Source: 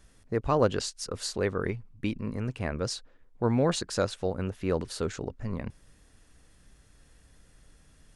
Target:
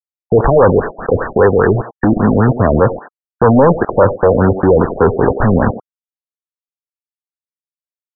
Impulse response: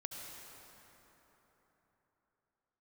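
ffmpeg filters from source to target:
-filter_complex "[0:a]acrossover=split=110|430|2300[link_01][link_02][link_03][link_04];[link_01]acrusher=bits=4:mode=log:mix=0:aa=0.000001[link_05];[link_04]aexciter=amount=4.9:drive=5.8:freq=8300[link_06];[link_05][link_02][link_03][link_06]amix=inputs=4:normalize=0,volume=28dB,asoftclip=hard,volume=-28dB,acrusher=bits=6:mix=0:aa=0.000001,asplit=2[link_07][link_08];[link_08]highpass=frequency=720:poles=1,volume=12dB,asoftclip=type=tanh:threshold=-26dB[link_09];[link_07][link_09]amix=inputs=2:normalize=0,lowpass=frequency=2100:poles=1,volume=-6dB,asplit=2[link_10][link_11];[link_11]adelay=90,highpass=300,lowpass=3400,asoftclip=type=hard:threshold=-35dB,volume=-12dB[link_12];[link_10][link_12]amix=inputs=2:normalize=0,asettb=1/sr,asplit=3[link_13][link_14][link_15];[link_13]atrim=end=1.284[link_16];[link_14]atrim=start=1.28:end=2.23,asetpts=PTS-STARTPTS,afade=type=in:duration=0.004:curve=qsin,afade=type=out:start_time=0.946:duration=0.004:curve=qsin,acompressor=threshold=-42dB:ratio=2[link_17];[link_15]atrim=start=2.226[link_18];[link_16][link_17]acrossfade=duration=0.004:curve1=hsin:curve2=qsin[link_19];[link_19][link_18]acrossfade=duration=0.004:curve1=qsin:curve2=hsin,alimiter=level_in=32.5dB:limit=-1dB:release=50:level=0:latency=1,afftfilt=real='re*lt(b*sr/1024,680*pow(1900/680,0.5+0.5*sin(2*PI*5*pts/sr)))':imag='im*lt(b*sr/1024,680*pow(1900/680,0.5+0.5*sin(2*PI*5*pts/sr)))':win_size=1024:overlap=0.75,volume=-1.5dB"

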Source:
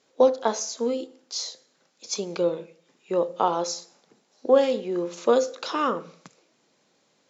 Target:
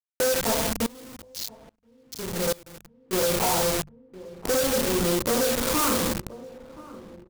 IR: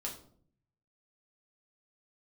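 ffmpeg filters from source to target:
-filter_complex "[1:a]atrim=start_sample=2205,asetrate=22932,aresample=44100[link_01];[0:a][link_01]afir=irnorm=-1:irlink=0,acompressor=threshold=-20dB:ratio=6,afwtdn=0.0282,adynamicsmooth=sensitivity=2:basefreq=2500,acrusher=bits=4:mix=0:aa=0.000001,bass=frequency=250:gain=12,treble=frequency=4000:gain=2,asplit=2[link_02][link_03];[link_03]adelay=1026,lowpass=frequency=1200:poles=1,volume=-20dB,asplit=2[link_04][link_05];[link_05]adelay=1026,lowpass=frequency=1200:poles=1,volume=0.49,asplit=2[link_06][link_07];[link_07]adelay=1026,lowpass=frequency=1200:poles=1,volume=0.49,asplit=2[link_08][link_09];[link_09]adelay=1026,lowpass=frequency=1200:poles=1,volume=0.49[link_10];[link_02][link_04][link_06][link_08][link_10]amix=inputs=5:normalize=0,asoftclip=type=hard:threshold=-21.5dB,highshelf=frequency=4000:gain=11.5,bandreject=frequency=50:width_type=h:width=6,bandreject=frequency=100:width_type=h:width=6,bandreject=frequency=150:width_type=h:width=6,bandreject=frequency=200:width_type=h:width=6,asettb=1/sr,asplit=3[link_11][link_12][link_13];[link_11]atrim=end=0.864[link_14];[link_12]atrim=start=0.86:end=3.13,asetpts=PTS-STARTPTS,afade=type=in:duration=0.004:curve=qsin,afade=type=out:start_time=2.266:duration=0.004:curve=qsin,aeval=exprs='val(0)*pow(10,-25*if(lt(mod(-1.2*n/s,1),2*abs(-1.2)/1000),1-mod(-1.2*n/s,1)/(2*abs(-1.2)/1000),(mod(-1.2*n/s,1)-2*abs(-1.2)/1000)/(1-2*abs(-1.2)/1000))/20)':channel_layout=same[link_15];[link_13]atrim=start=3.126[link_16];[link_14][link_15]acrossfade=duration=0.004:curve1=hsin:curve2=qsin[link_17];[link_17][link_16]acrossfade=duration=0.004:curve1=qsin:curve2=hsin"

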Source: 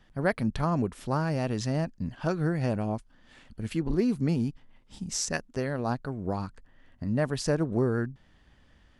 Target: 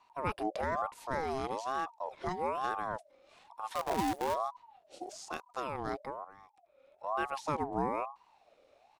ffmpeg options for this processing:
ffmpeg -i in.wav -filter_complex "[0:a]asettb=1/sr,asplit=3[link_01][link_02][link_03];[link_01]atrim=end=5.044[link_04];[link_02]atrim=start=5.04:end=5.46,asetpts=PTS-STARTPTS,afade=type=in:duration=0.004:curve=qsin,afade=type=out:start_time=0.416:duration=0.004:curve=qsin,aeval=exprs='sgn(val(0))*max(abs(val(0))-0.00126,0)':channel_layout=same[link_05];[link_03]atrim=start=5.456[link_06];[link_04][link_05]acrossfade=duration=0.004:curve1=hsin:curve2=qsin[link_07];[link_07][link_06]acrossfade=duration=0.004:curve1=qsin:curve2=hsin,deesser=1,tiltshelf=frequency=1200:gain=-5,aresample=32000,aresample=44100,lowshelf=frequency=460:gain=9,asplit=3[link_08][link_09][link_10];[link_08]afade=type=out:start_time=3.74:duration=0.02[link_11];[link_09]acrusher=bits=5:dc=4:mix=0:aa=0.000001,afade=type=in:start_time=3.74:duration=0.02,afade=type=out:start_time=4.33:duration=0.02[link_12];[link_10]afade=type=in:start_time=4.33:duration=0.02[link_13];[link_11][link_12][link_13]amix=inputs=3:normalize=0,asettb=1/sr,asplit=3[link_14][link_15][link_16];[link_14]atrim=end=6.244[link_17];[link_15]atrim=start=6.24:end=7.04,asetpts=PTS-STARTPTS,afade=type=in:duration=0.004:curve=qsin,afade=type=out:start_time=0.796:duration=0.004:curve=qsin,acompressor=threshold=-52dB:ratio=2.5[link_18];[link_16]atrim=start=7.036[link_19];[link_17][link_18]acrossfade=duration=0.004:curve1=hsin:curve2=qsin[link_20];[link_20][link_19]acrossfade=duration=0.004:curve1=qsin:curve2=hsin,aeval=exprs='val(0)*sin(2*PI*760*n/s+760*0.3/1.1*sin(2*PI*1.1*n/s))':channel_layout=same,volume=-6.5dB" out.wav

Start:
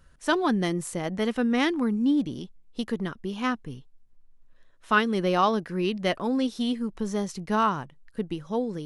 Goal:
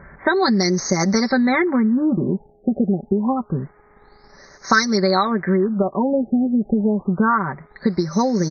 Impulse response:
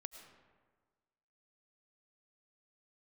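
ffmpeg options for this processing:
-filter_complex "[0:a]highpass=52,aemphasis=mode=production:type=75kf,aecho=1:1:5.4:0.74,aeval=exprs='val(0)+0.00631*sin(2*PI*8900*n/s)':channel_layout=same,acrossover=split=2900[link_01][link_02];[link_01]acompressor=threshold=-30dB:ratio=12[link_03];[link_02]acrusher=bits=3:mode=log:mix=0:aa=0.000001[link_04];[link_03][link_04]amix=inputs=2:normalize=0,equalizer=frequency=2500:width_type=o:width=0.23:gain=-6,acrusher=bits=8:mix=0:aa=0.000001,asetrate=45938,aresample=44100,asuperstop=centerf=3000:order=8:qfactor=1.5,alimiter=level_in=17dB:limit=-1dB:release=50:level=0:latency=1,afftfilt=real='re*lt(b*sr/1024,780*pow(6700/780,0.5+0.5*sin(2*PI*0.27*pts/sr)))':imag='im*lt(b*sr/1024,780*pow(6700/780,0.5+0.5*sin(2*PI*0.27*pts/sr)))':win_size=1024:overlap=0.75,volume=-1.5dB"

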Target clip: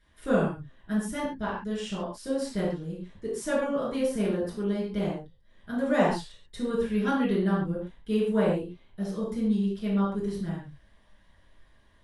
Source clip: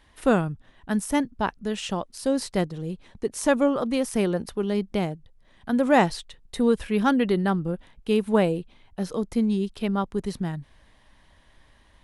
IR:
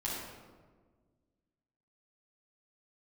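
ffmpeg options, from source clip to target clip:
-filter_complex "[1:a]atrim=start_sample=2205,afade=type=out:start_time=0.3:duration=0.01,atrim=end_sample=13671,asetrate=74970,aresample=44100[link_01];[0:a][link_01]afir=irnorm=-1:irlink=0,volume=-5dB"

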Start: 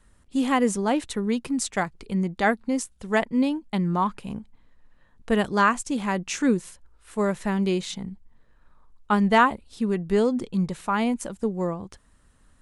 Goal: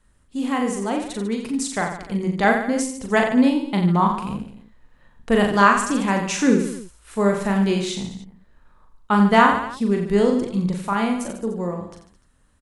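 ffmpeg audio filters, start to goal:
ffmpeg -i in.wav -filter_complex "[0:a]dynaudnorm=framelen=300:gausssize=13:maxgain=11.5dB,asplit=2[link_01][link_02];[link_02]aecho=0:1:40|88|145.6|214.7|297.7:0.631|0.398|0.251|0.158|0.1[link_03];[link_01][link_03]amix=inputs=2:normalize=0,volume=-3.5dB" out.wav

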